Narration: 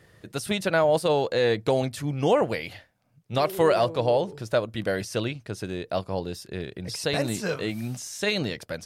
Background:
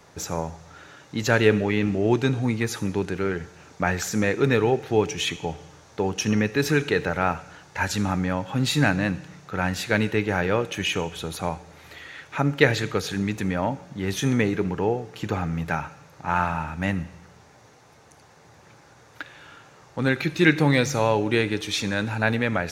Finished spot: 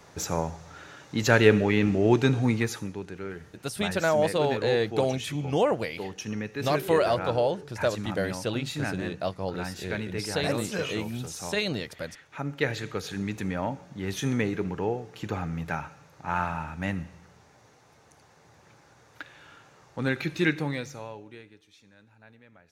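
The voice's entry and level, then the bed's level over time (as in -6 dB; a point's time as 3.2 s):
3.30 s, -2.5 dB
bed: 2.58 s 0 dB
2.96 s -11 dB
12.33 s -11 dB
13.35 s -5 dB
20.38 s -5 dB
21.7 s -31.5 dB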